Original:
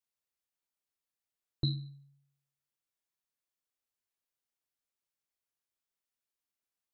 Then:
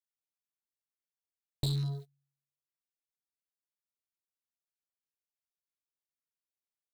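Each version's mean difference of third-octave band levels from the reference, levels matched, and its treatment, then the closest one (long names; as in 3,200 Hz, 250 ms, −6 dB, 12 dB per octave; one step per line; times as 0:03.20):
9.0 dB: leveller curve on the samples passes 5
downward compressor, threshold −30 dBFS, peak gain reduction 8 dB
notch on a step sequencer 6 Hz 460–3,100 Hz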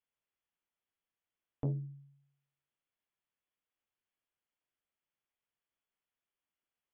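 3.0 dB: linear-phase brick-wall low-pass 3,500 Hz
saturating transformer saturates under 320 Hz
level +1.5 dB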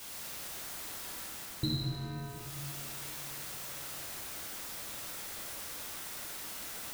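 20.5 dB: converter with a step at zero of −42 dBFS
speech leveller within 3 dB 0.5 s
dense smooth reverb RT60 3.2 s, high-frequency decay 0.45×, DRR −5.5 dB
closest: second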